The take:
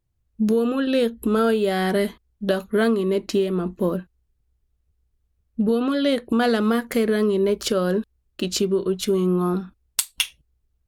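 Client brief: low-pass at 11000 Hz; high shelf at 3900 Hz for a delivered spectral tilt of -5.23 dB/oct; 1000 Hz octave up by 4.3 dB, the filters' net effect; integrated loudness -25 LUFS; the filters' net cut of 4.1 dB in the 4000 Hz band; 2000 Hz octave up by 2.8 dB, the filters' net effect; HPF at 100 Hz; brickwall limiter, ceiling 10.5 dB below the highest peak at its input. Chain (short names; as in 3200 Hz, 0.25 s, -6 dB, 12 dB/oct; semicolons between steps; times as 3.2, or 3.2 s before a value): HPF 100 Hz; LPF 11000 Hz; bell 1000 Hz +6 dB; bell 2000 Hz +3.5 dB; high shelf 3900 Hz -6.5 dB; bell 4000 Hz -3.5 dB; gain +1 dB; limiter -16 dBFS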